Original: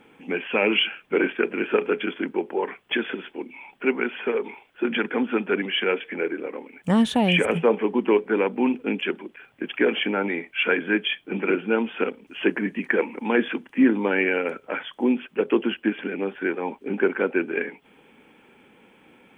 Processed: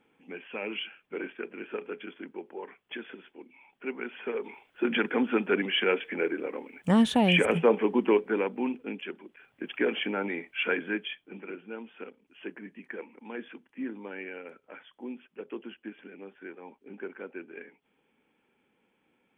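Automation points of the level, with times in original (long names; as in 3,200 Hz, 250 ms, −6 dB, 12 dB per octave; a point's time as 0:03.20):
0:03.71 −14.5 dB
0:04.91 −2.5 dB
0:08.00 −2.5 dB
0:09.08 −12.5 dB
0:09.68 −6.5 dB
0:10.78 −6.5 dB
0:11.48 −18 dB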